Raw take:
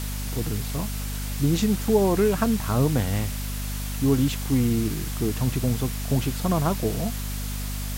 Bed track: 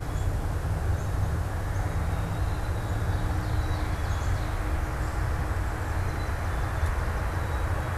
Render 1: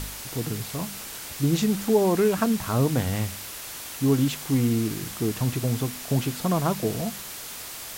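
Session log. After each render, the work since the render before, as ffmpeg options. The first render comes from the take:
-af "bandreject=f=50:t=h:w=4,bandreject=f=100:t=h:w=4,bandreject=f=150:t=h:w=4,bandreject=f=200:t=h:w=4,bandreject=f=250:t=h:w=4"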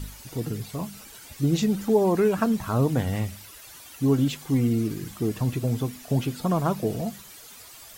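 -af "afftdn=nr=12:nf=-38"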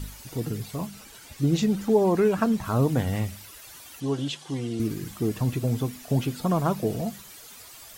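-filter_complex "[0:a]asettb=1/sr,asplit=3[a][b][c];[a]atrim=end=0.864[d];[b]atrim=start=0.86:end=2.65,asetpts=PTS-STARTPTS,afade=t=in:d=0.004:c=qsin,afade=t=out:st=1.786:d=0.004:c=qsin,highshelf=f=10k:g=-6[e];[c]atrim=start=2.646[f];[d][e]acrossfade=d=0.004:c1=hsin:c2=qsin[g];[g][f]acrossfade=d=0.004:c1=qsin:c2=hsin,asettb=1/sr,asplit=3[h][i][j];[h]atrim=end=4.004[k];[i]atrim=start=4:end=4.8,asetpts=PTS-STARTPTS,afade=t=in:d=0.004:c=qsin,afade=t=out:st=0.796:d=0.004:c=qsin,highpass=190,equalizer=f=250:t=q:w=4:g=-10,equalizer=f=450:t=q:w=4:g=-4,equalizer=f=1.3k:t=q:w=4:g=-4,equalizer=f=2.2k:t=q:w=4:g=-6,equalizer=f=3.2k:t=q:w=4:g=5,equalizer=f=7.3k:t=q:w=4:g=-3,lowpass=f=9k:w=0.5412,lowpass=f=9k:w=1.3066[l];[j]atrim=start=4.796[m];[k][l]acrossfade=d=0.004:c1=hsin:c2=qsin[n];[n][m]acrossfade=d=0.004:c1=qsin:c2=hsin"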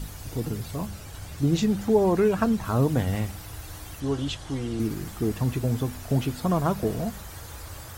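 -filter_complex "[1:a]volume=-13dB[a];[0:a][a]amix=inputs=2:normalize=0"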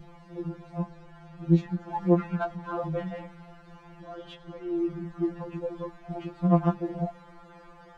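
-af "adynamicsmooth=sensitivity=0.5:basefreq=1.6k,afftfilt=real='re*2.83*eq(mod(b,8),0)':imag='im*2.83*eq(mod(b,8),0)':win_size=2048:overlap=0.75"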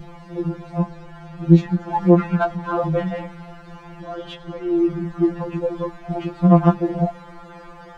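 -af "volume=10dB,alimiter=limit=-1dB:level=0:latency=1"

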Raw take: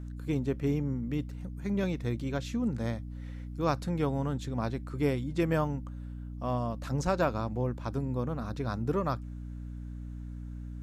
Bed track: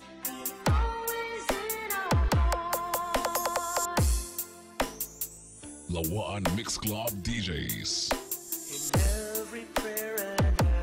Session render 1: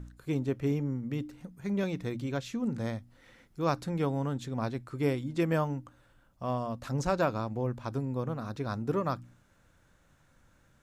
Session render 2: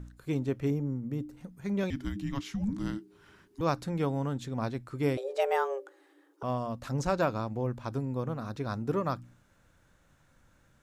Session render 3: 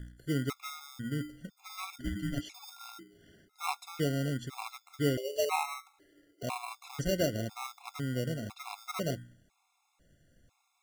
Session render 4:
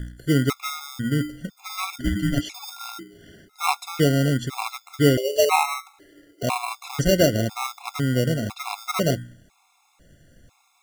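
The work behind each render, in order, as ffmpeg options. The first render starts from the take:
-af "bandreject=f=60:t=h:w=4,bandreject=f=120:t=h:w=4,bandreject=f=180:t=h:w=4,bandreject=f=240:t=h:w=4,bandreject=f=300:t=h:w=4"
-filter_complex "[0:a]asettb=1/sr,asplit=3[a][b][c];[a]atrim=end=0.704[d];[b]atrim=start=0.7:end=1.37,asetpts=PTS-STARTPTS,afade=t=in:d=0.004:c=qsin,afade=t=out:st=0.666:d=0.004:c=qsin,equalizer=f=2.8k:w=0.6:g=-11[e];[c]atrim=start=1.366[f];[d][e]acrossfade=d=0.004:c1=hsin:c2=qsin[g];[g][f]acrossfade=d=0.004:c1=qsin:c2=hsin,asettb=1/sr,asplit=3[h][i][j];[h]atrim=end=1.904[k];[i]atrim=start=1.9:end=3.61,asetpts=PTS-STARTPTS,afade=t=in:d=0.004:c=qsin,afade=t=out:st=1.706:d=0.004:c=qsin,afreqshift=-430[l];[j]atrim=start=3.606[m];[k][l]acrossfade=d=0.004:c1=hsin:c2=qsin[n];[n][m]acrossfade=d=0.004:c1=qsin:c2=hsin,asettb=1/sr,asplit=3[o][p][q];[o]atrim=end=5.174[r];[p]atrim=start=5.17:end=6.43,asetpts=PTS-STARTPTS,afade=t=in:d=0.004:c=qsin,afade=t=out:st=1.256:d=0.004:c=qsin,afreqshift=270[s];[q]atrim=start=6.426[t];[r][s]acrossfade=d=0.004:c1=hsin:c2=qsin[u];[u][t]acrossfade=d=0.004:c1=qsin:c2=hsin"
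-filter_complex "[0:a]acrossover=split=1600[a][b];[a]acrusher=samples=26:mix=1:aa=0.000001[c];[c][b]amix=inputs=2:normalize=0,afftfilt=real='re*gt(sin(2*PI*1*pts/sr)*(1-2*mod(floor(b*sr/1024/690),2)),0)':imag='im*gt(sin(2*PI*1*pts/sr)*(1-2*mod(floor(b*sr/1024/690),2)),0)':win_size=1024:overlap=0.75"
-af "volume=12dB"

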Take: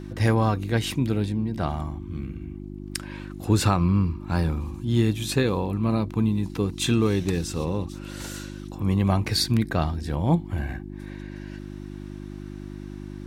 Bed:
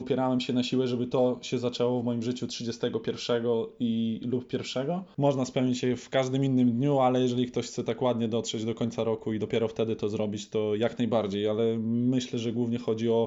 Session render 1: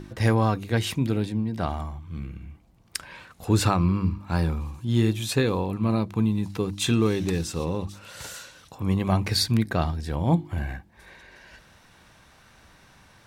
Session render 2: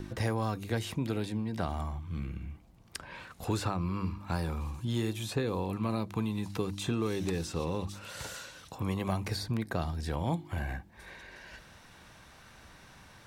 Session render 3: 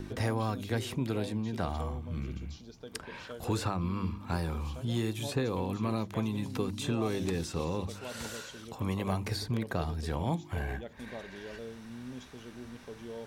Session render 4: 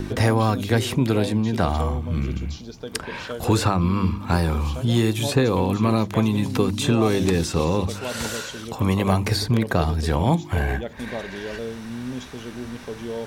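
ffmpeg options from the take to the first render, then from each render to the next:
-af "bandreject=f=50:t=h:w=4,bandreject=f=100:t=h:w=4,bandreject=f=150:t=h:w=4,bandreject=f=200:t=h:w=4,bandreject=f=250:t=h:w=4,bandreject=f=300:t=h:w=4,bandreject=f=350:t=h:w=4"
-filter_complex "[0:a]acrossover=split=460|1200|5400[a][b][c][d];[a]acompressor=threshold=-32dB:ratio=4[e];[b]acompressor=threshold=-37dB:ratio=4[f];[c]acompressor=threshold=-44dB:ratio=4[g];[d]acompressor=threshold=-48dB:ratio=4[h];[e][f][g][h]amix=inputs=4:normalize=0"
-filter_complex "[1:a]volume=-17.5dB[a];[0:a][a]amix=inputs=2:normalize=0"
-af "volume=12dB"

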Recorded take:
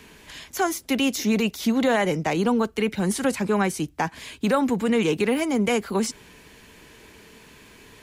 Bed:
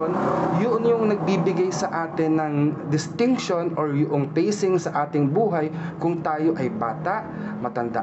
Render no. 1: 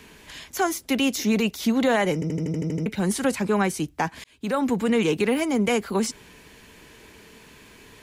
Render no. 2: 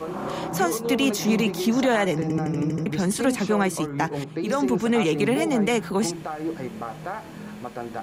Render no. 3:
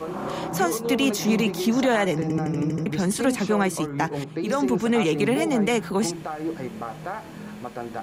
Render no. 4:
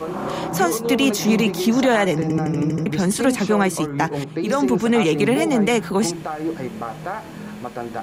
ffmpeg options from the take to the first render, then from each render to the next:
-filter_complex "[0:a]asplit=11[a][b][c][d][e][f][g][h][i][j][k];[a]atrim=end=2.222[l];[b]atrim=start=2.138:end=2.222[m];[c]atrim=start=2.138:end=2.222[n];[d]atrim=start=2.138:end=2.222[o];[e]atrim=start=2.138:end=2.222[p];[f]atrim=start=2.138:end=2.222[q];[g]atrim=start=2.138:end=2.222[r];[h]atrim=start=2.138:end=2.222[s];[i]atrim=start=2.138:end=2.222[t];[j]atrim=start=2.858:end=4.24,asetpts=PTS-STARTPTS,afade=t=out:st=1.378:d=0.004:c=hsin[u];[k]atrim=start=4.24,asetpts=PTS-STARTPTS,afade=t=in:d=0.46[v];[l][m]acrossfade=d=0.004:c1=hsin:c2=hsin[w];[w][n]acrossfade=d=0.004:c1=hsin:c2=hsin[x];[x][o]acrossfade=d=0.004:c1=hsin:c2=hsin[y];[y][p]acrossfade=d=0.004:c1=hsin:c2=hsin[z];[z][q]acrossfade=d=0.004:c1=hsin:c2=hsin[aa];[aa][r]acrossfade=d=0.004:c1=hsin:c2=hsin[ab];[ab][s]acrossfade=d=0.004:c1=hsin:c2=hsin[ac];[ac][t]acrossfade=d=0.004:c1=hsin:c2=hsin[ad];[u][v]concat=n=2:v=0:a=1[ae];[ad][ae]acrossfade=d=0.004:c1=hsin:c2=hsin"
-filter_complex "[1:a]volume=-8dB[a];[0:a][a]amix=inputs=2:normalize=0"
-af anull
-af "volume=4dB"

